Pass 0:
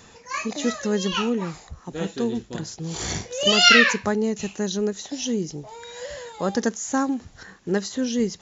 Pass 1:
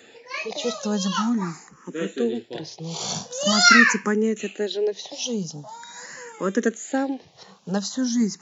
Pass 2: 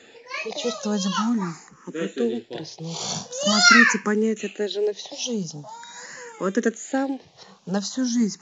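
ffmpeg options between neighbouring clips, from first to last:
-filter_complex "[0:a]highpass=f=160:w=0.5412,highpass=f=160:w=1.3066,asplit=2[a][b];[b]afreqshift=0.44[c];[a][c]amix=inputs=2:normalize=1,volume=3.5dB"
-ar 16000 -c:a pcm_mulaw

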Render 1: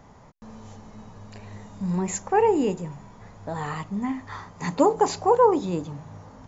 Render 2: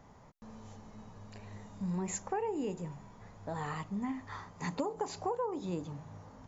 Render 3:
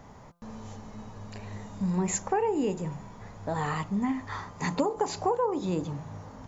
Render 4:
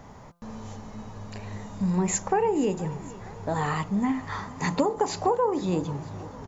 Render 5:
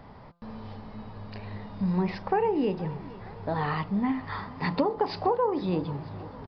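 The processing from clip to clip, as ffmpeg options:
-af "acompressor=threshold=-24dB:ratio=10,volume=-7dB"
-af "bandreject=f=171.8:t=h:w=4,bandreject=f=343.6:t=h:w=4,bandreject=f=515.4:t=h:w=4,bandreject=f=687.2:t=h:w=4,bandreject=f=859:t=h:w=4,bandreject=f=1.0308k:t=h:w=4,bandreject=f=1.2026k:t=h:w=4,bandreject=f=1.3744k:t=h:w=4,bandreject=f=1.5462k:t=h:w=4,volume=8dB"
-af "aecho=1:1:471|942|1413|1884|2355:0.106|0.0614|0.0356|0.0207|0.012,volume=3dB"
-af "aresample=11025,aresample=44100,volume=-1.5dB"

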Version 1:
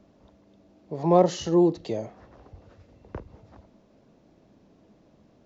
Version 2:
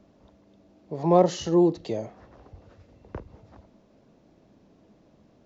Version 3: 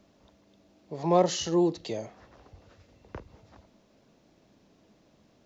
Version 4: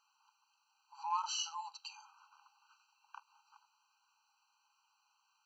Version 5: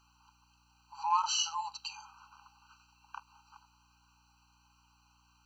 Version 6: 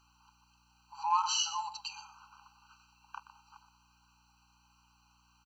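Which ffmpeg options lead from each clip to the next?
-af anull
-af "tiltshelf=f=1.5k:g=-5"
-af "afftfilt=real='re*eq(mod(floor(b*sr/1024/790),2),1)':imag='im*eq(mod(floor(b*sr/1024/790),2),1)':win_size=1024:overlap=0.75,volume=-3dB"
-af "aeval=exprs='val(0)+0.000141*(sin(2*PI*60*n/s)+sin(2*PI*2*60*n/s)/2+sin(2*PI*3*60*n/s)/3+sin(2*PI*4*60*n/s)/4+sin(2*PI*5*60*n/s)/5)':c=same,volume=7dB"
-af "aecho=1:1:122:0.224"

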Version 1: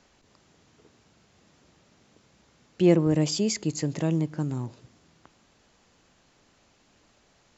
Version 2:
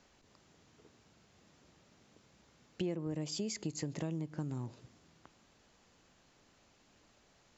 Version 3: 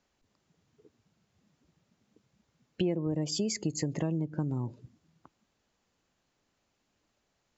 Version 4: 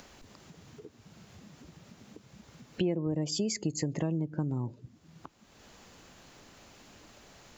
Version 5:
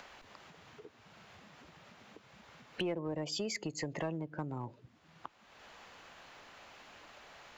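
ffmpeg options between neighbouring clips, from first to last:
-af "acompressor=threshold=-30dB:ratio=6,volume=-4.5dB"
-af "afftdn=nr=17:nf=-51,volume=7dB"
-af "acompressor=mode=upward:threshold=-36dB:ratio=2.5"
-filter_complex "[0:a]acrossover=split=560 3700:gain=0.2 1 0.2[a][b][c];[a][b][c]amix=inputs=3:normalize=0,asplit=2[d][e];[e]aeval=exprs='0.0158*(abs(mod(val(0)/0.0158+3,4)-2)-1)':c=same,volume=-12dB[f];[d][f]amix=inputs=2:normalize=0,volume=2.5dB"

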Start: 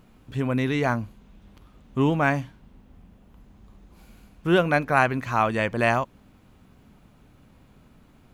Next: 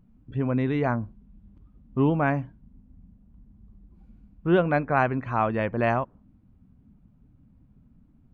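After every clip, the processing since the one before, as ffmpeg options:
-af "afftdn=nr=15:nf=-46,lowpass=f=1.1k:p=1"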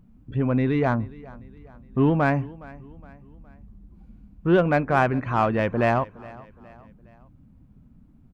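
-filter_complex "[0:a]asplit=2[a][b];[b]asoftclip=type=tanh:threshold=-23.5dB,volume=-4dB[c];[a][c]amix=inputs=2:normalize=0,aecho=1:1:415|830|1245:0.0891|0.041|0.0189"

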